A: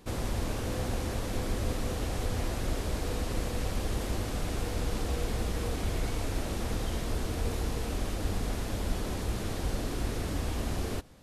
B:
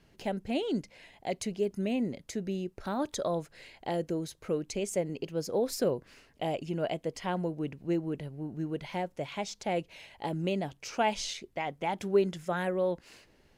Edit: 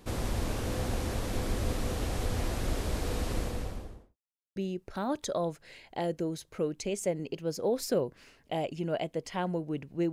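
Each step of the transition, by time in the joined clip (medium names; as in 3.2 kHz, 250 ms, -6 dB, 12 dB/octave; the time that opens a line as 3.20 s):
A
3.28–4.17 s: studio fade out
4.17–4.56 s: mute
4.56 s: go over to B from 2.46 s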